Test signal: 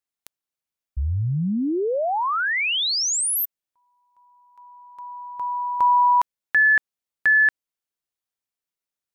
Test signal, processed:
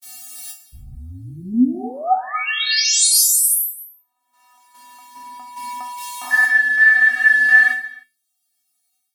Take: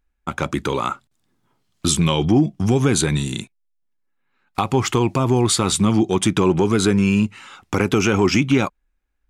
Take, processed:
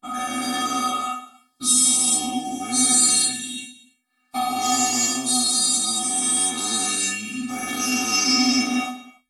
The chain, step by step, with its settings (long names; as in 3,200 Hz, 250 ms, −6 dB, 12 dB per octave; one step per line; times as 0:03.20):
every bin's largest magnitude spread in time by 480 ms
graphic EQ with 15 bands 160 Hz −7 dB, 630 Hz +7 dB, 4,000 Hz +3 dB, 10,000 Hz +7 dB
automatic gain control gain up to 11.5 dB
high-shelf EQ 3,200 Hz +10.5 dB
tuned comb filter 250 Hz, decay 0.24 s, harmonics odd, mix 100%
reverb whose tail is shaped and stops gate 330 ms falling, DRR 9 dB
level +6 dB